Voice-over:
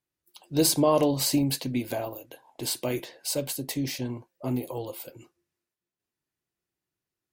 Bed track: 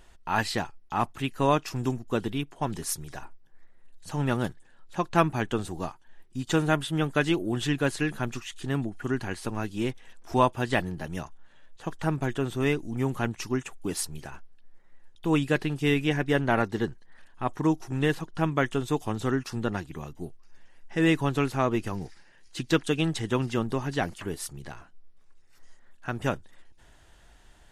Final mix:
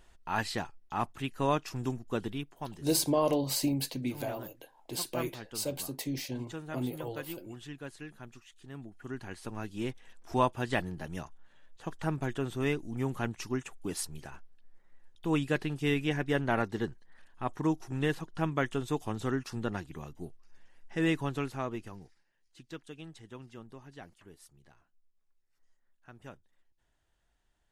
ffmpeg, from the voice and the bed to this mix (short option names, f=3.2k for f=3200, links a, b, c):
-filter_complex "[0:a]adelay=2300,volume=-5.5dB[a];[1:a]volume=7dB,afade=t=out:st=2.26:d=0.65:silence=0.251189,afade=t=in:st=8.71:d=1.35:silence=0.237137,afade=t=out:st=20.9:d=1.36:silence=0.16788[b];[a][b]amix=inputs=2:normalize=0"